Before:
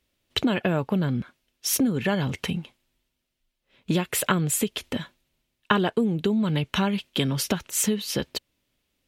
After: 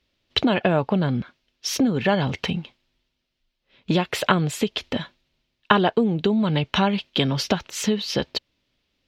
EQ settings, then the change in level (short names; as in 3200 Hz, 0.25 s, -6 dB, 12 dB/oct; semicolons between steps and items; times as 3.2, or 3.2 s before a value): dynamic EQ 740 Hz, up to +6 dB, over -41 dBFS, Q 1.4; resonant high shelf 6800 Hz -13 dB, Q 1.5; +2.0 dB